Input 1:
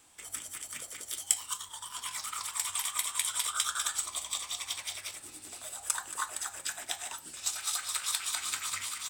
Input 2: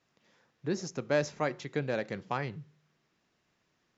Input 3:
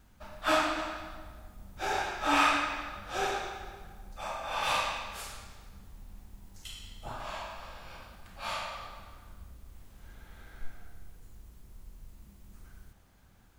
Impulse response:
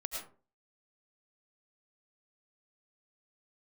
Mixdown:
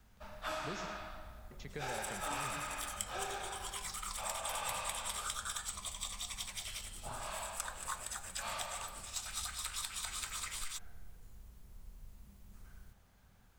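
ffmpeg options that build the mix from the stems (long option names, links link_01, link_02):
-filter_complex "[0:a]adelay=1700,volume=-4.5dB[link_01];[1:a]alimiter=limit=-24dB:level=0:latency=1:release=474,volume=-8dB,asplit=3[link_02][link_03][link_04];[link_02]atrim=end=0.86,asetpts=PTS-STARTPTS,afade=type=out:start_time=0.856:duration=0.004:curve=hsin[link_05];[link_03]atrim=start=0.86:end=1.51,asetpts=PTS-STARTPTS,volume=0[link_06];[link_04]atrim=start=1.51,asetpts=PTS-STARTPTS,afade=type=in:duration=0.004:curve=hsin[link_07];[link_05][link_06][link_07]concat=n=3:v=0:a=1,asplit=2[link_08][link_09];[link_09]volume=-3.5dB[link_10];[2:a]acrossover=split=180[link_11][link_12];[link_12]acompressor=threshold=-34dB:ratio=2[link_13];[link_11][link_13]amix=inputs=2:normalize=0,volume=-3.5dB[link_14];[3:a]atrim=start_sample=2205[link_15];[link_10][link_15]afir=irnorm=-1:irlink=0[link_16];[link_01][link_08][link_14][link_16]amix=inputs=4:normalize=0,equalizer=frequency=310:width_type=o:width=0.28:gain=-9,acrossover=split=1100|4700[link_17][link_18][link_19];[link_17]acompressor=threshold=-40dB:ratio=4[link_20];[link_18]acompressor=threshold=-43dB:ratio=4[link_21];[link_19]acompressor=threshold=-41dB:ratio=4[link_22];[link_20][link_21][link_22]amix=inputs=3:normalize=0"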